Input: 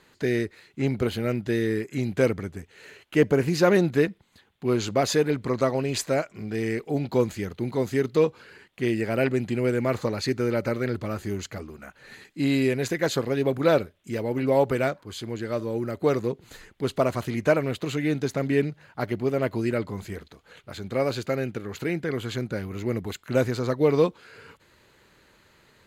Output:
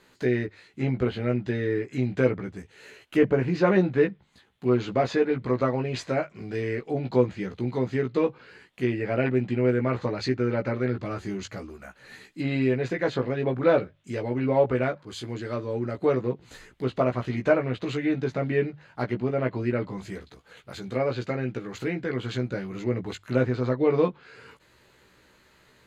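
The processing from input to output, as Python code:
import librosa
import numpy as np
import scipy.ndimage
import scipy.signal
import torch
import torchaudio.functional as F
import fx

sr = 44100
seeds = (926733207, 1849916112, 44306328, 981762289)

y = fx.env_lowpass_down(x, sr, base_hz=2700.0, full_db=-22.0)
y = fx.hum_notches(y, sr, base_hz=50, count=3)
y = fx.doubler(y, sr, ms=16.0, db=-4)
y = F.gain(torch.from_numpy(y), -2.0).numpy()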